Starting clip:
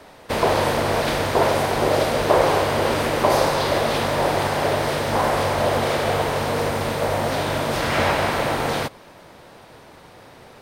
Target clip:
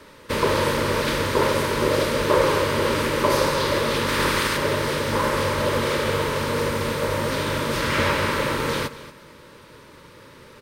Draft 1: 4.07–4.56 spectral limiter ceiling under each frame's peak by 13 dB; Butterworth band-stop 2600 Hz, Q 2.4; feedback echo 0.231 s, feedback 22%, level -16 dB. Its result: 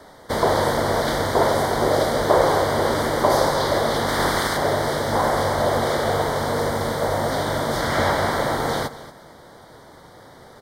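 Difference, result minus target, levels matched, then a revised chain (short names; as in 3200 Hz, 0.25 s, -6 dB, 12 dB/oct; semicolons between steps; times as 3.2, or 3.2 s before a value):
2000 Hz band -2.5 dB
4.07–4.56 spectral limiter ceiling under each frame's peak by 13 dB; Butterworth band-stop 730 Hz, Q 2.4; feedback echo 0.231 s, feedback 22%, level -16 dB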